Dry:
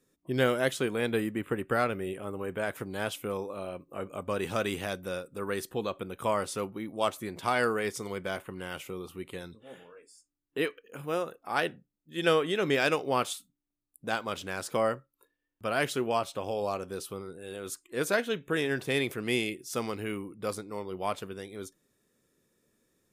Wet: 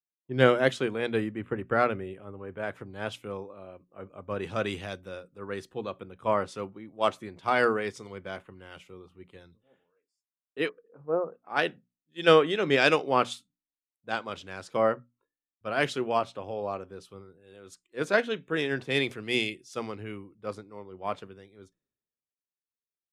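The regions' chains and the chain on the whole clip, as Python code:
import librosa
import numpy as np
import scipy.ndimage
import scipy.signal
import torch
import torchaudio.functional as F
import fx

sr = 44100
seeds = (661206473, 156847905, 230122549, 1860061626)

y = fx.chain(x, sr, fx.lowpass(hz=1200.0, slope=24),
    fx.peak_eq(hz=470.0, db=6.0, octaves=0.21), at=(10.69, 11.34))
y = scipy.signal.sosfilt(scipy.signal.bessel(2, 4400.0, 'lowpass', norm='mag', fs=sr, output='sos'), y)
y = fx.hum_notches(y, sr, base_hz=60, count=4)
y = fx.band_widen(y, sr, depth_pct=100)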